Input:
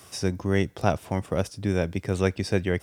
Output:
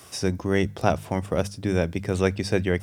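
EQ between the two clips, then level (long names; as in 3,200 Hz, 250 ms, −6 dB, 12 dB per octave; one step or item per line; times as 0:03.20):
mains-hum notches 50/100/150/200 Hz
+2.0 dB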